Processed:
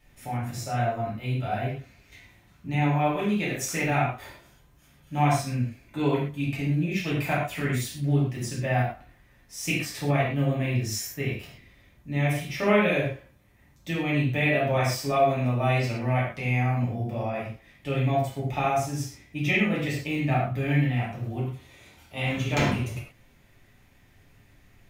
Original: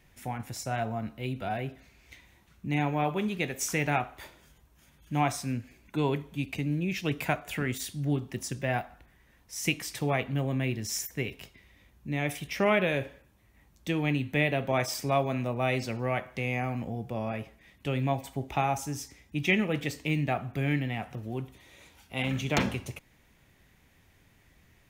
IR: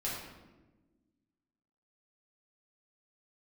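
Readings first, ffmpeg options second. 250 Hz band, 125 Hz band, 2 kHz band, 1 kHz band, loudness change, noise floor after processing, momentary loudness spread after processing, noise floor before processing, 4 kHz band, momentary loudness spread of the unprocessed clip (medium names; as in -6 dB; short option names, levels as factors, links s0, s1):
+3.5 dB, +6.5 dB, +3.0 dB, +4.0 dB, +4.0 dB, -58 dBFS, 11 LU, -63 dBFS, +1.5 dB, 11 LU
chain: -filter_complex "[1:a]atrim=start_sample=2205,atrim=end_sample=6174[s0];[0:a][s0]afir=irnorm=-1:irlink=0"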